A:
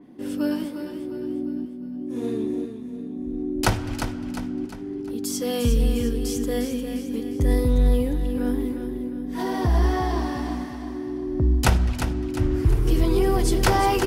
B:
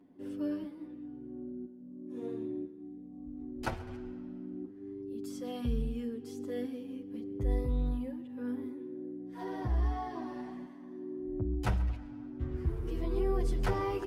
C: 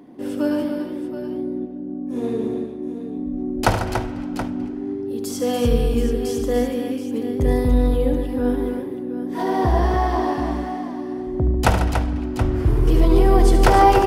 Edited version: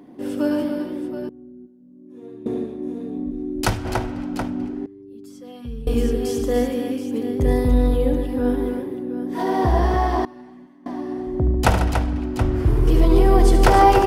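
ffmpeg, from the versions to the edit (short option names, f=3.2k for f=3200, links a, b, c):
-filter_complex "[1:a]asplit=3[a][b][c];[2:a]asplit=5[d][e][f][g][h];[d]atrim=end=1.292[i];[a]atrim=start=1.288:end=2.462[j];[e]atrim=start=2.458:end=3.312[k];[0:a]atrim=start=3.308:end=3.852[l];[f]atrim=start=3.848:end=4.862[m];[b]atrim=start=4.858:end=5.872[n];[g]atrim=start=5.868:end=10.252[o];[c]atrim=start=10.248:end=10.862[p];[h]atrim=start=10.858[q];[i][j]acrossfade=d=0.004:c1=hsin:c2=hsin[r];[r][k]acrossfade=d=0.004:c1=hsin:c2=hsin[s];[s][l]acrossfade=d=0.004:c1=hsin:c2=hsin[t];[t][m]acrossfade=d=0.004:c1=hsin:c2=hsin[u];[u][n]acrossfade=d=0.004:c1=hsin:c2=hsin[v];[v][o]acrossfade=d=0.004:c1=hsin:c2=hsin[w];[w][p]acrossfade=d=0.004:c1=hsin:c2=hsin[x];[x][q]acrossfade=d=0.004:c1=hsin:c2=hsin"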